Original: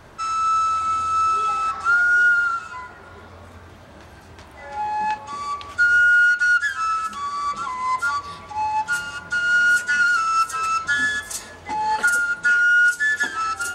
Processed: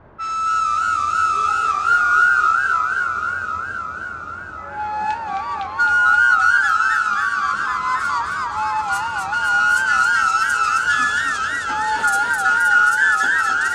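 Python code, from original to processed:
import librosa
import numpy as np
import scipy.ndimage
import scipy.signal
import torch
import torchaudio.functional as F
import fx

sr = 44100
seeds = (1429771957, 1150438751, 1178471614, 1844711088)

y = fx.env_lowpass(x, sr, base_hz=1200.0, full_db=-18.5)
y = fx.echo_warbled(y, sr, ms=262, feedback_pct=78, rate_hz=2.8, cents=151, wet_db=-4.0)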